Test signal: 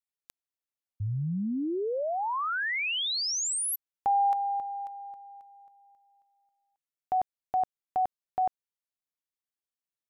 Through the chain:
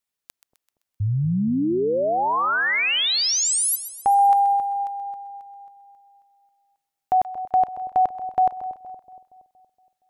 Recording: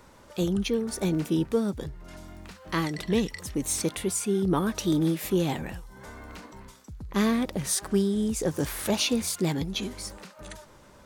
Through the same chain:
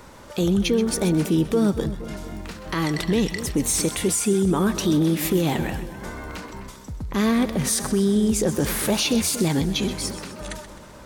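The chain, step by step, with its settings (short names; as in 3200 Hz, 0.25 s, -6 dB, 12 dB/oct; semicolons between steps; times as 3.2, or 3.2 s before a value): limiter -21.5 dBFS; on a send: split-band echo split 770 Hz, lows 0.234 s, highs 0.129 s, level -12.5 dB; on the sum: gain +8.5 dB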